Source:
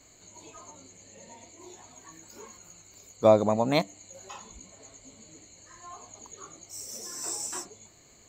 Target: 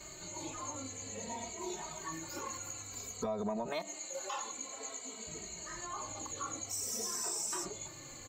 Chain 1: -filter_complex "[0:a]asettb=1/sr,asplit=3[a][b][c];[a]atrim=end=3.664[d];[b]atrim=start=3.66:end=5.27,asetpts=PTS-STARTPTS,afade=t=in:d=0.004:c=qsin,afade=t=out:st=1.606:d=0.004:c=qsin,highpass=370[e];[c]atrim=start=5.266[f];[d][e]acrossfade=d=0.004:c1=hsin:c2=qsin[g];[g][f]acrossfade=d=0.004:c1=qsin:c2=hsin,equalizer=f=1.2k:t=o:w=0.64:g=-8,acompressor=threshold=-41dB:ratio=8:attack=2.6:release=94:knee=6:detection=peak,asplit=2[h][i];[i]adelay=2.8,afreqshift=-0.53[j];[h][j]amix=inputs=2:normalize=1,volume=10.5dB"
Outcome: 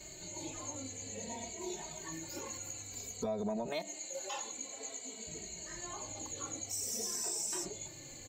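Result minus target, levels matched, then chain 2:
1000 Hz band -4.5 dB
-filter_complex "[0:a]asettb=1/sr,asplit=3[a][b][c];[a]atrim=end=3.664[d];[b]atrim=start=3.66:end=5.27,asetpts=PTS-STARTPTS,afade=t=in:d=0.004:c=qsin,afade=t=out:st=1.606:d=0.004:c=qsin,highpass=370[e];[c]atrim=start=5.266[f];[d][e]acrossfade=d=0.004:c1=hsin:c2=qsin[g];[g][f]acrossfade=d=0.004:c1=qsin:c2=hsin,equalizer=f=1.2k:t=o:w=0.64:g=4,acompressor=threshold=-41dB:ratio=8:attack=2.6:release=94:knee=6:detection=peak,asplit=2[h][i];[i]adelay=2.8,afreqshift=-0.53[j];[h][j]amix=inputs=2:normalize=1,volume=10.5dB"

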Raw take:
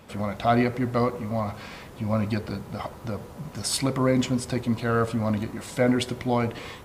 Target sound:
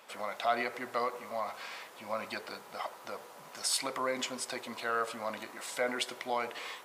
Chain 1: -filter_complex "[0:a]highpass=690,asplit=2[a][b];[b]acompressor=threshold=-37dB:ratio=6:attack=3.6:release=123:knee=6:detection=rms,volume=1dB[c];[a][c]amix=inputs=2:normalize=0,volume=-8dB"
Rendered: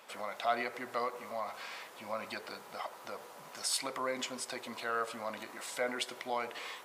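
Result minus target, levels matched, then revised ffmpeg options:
compressor: peak gain reduction +8.5 dB
-filter_complex "[0:a]highpass=690,asplit=2[a][b];[b]acompressor=threshold=-27dB:ratio=6:attack=3.6:release=123:knee=6:detection=rms,volume=1dB[c];[a][c]amix=inputs=2:normalize=0,volume=-8dB"

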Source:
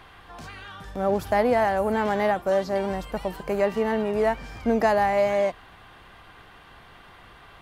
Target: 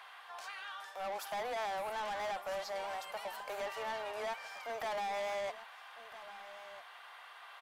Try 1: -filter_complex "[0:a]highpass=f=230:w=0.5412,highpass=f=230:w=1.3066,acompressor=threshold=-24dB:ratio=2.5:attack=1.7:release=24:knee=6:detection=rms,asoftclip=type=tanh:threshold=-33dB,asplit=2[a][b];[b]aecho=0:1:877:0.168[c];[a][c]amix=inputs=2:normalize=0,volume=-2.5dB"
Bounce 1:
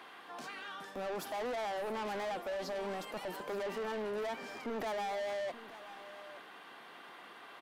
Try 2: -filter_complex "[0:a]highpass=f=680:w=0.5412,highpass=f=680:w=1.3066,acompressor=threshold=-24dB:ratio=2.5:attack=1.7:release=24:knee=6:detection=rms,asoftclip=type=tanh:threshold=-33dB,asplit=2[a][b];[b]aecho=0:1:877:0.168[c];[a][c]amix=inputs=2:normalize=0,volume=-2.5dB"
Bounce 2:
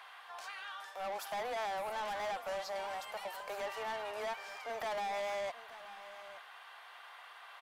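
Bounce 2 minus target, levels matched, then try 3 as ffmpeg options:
echo 0.427 s early
-filter_complex "[0:a]highpass=f=680:w=0.5412,highpass=f=680:w=1.3066,acompressor=threshold=-24dB:ratio=2.5:attack=1.7:release=24:knee=6:detection=rms,asoftclip=type=tanh:threshold=-33dB,asplit=2[a][b];[b]aecho=0:1:1304:0.168[c];[a][c]amix=inputs=2:normalize=0,volume=-2.5dB"

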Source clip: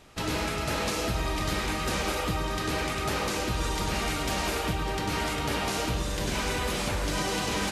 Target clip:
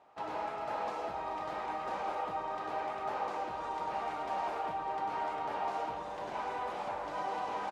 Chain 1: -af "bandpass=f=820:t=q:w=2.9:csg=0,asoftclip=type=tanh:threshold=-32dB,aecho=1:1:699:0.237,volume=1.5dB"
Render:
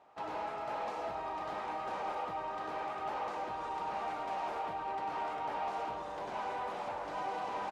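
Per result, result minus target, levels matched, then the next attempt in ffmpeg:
soft clip: distortion +19 dB; echo 0.266 s late
-af "bandpass=f=820:t=q:w=2.9:csg=0,asoftclip=type=tanh:threshold=-21dB,aecho=1:1:699:0.237,volume=1.5dB"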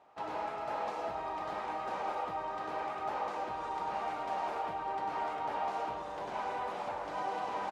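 echo 0.266 s late
-af "bandpass=f=820:t=q:w=2.9:csg=0,asoftclip=type=tanh:threshold=-21dB,aecho=1:1:433:0.237,volume=1.5dB"

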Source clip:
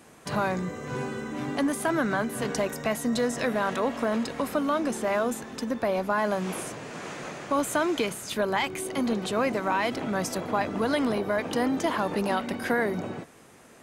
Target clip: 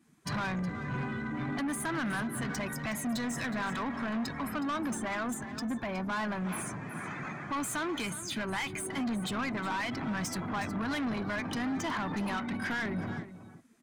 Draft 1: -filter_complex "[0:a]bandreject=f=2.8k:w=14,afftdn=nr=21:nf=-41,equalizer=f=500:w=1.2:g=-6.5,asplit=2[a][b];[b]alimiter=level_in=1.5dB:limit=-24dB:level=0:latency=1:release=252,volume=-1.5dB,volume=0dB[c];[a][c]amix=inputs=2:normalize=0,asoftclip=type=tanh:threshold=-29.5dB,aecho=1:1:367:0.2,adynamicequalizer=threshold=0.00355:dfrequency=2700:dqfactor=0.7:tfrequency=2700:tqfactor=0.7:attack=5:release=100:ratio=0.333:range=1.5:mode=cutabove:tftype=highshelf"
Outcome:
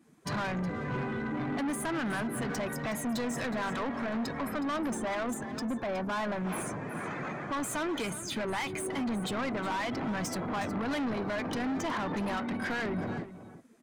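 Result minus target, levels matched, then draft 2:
500 Hz band +4.5 dB
-filter_complex "[0:a]bandreject=f=2.8k:w=14,afftdn=nr=21:nf=-41,equalizer=f=500:w=1.2:g=-17.5,asplit=2[a][b];[b]alimiter=level_in=1.5dB:limit=-24dB:level=0:latency=1:release=252,volume=-1.5dB,volume=0dB[c];[a][c]amix=inputs=2:normalize=0,asoftclip=type=tanh:threshold=-29.5dB,aecho=1:1:367:0.2,adynamicequalizer=threshold=0.00355:dfrequency=2700:dqfactor=0.7:tfrequency=2700:tqfactor=0.7:attack=5:release=100:ratio=0.333:range=1.5:mode=cutabove:tftype=highshelf"

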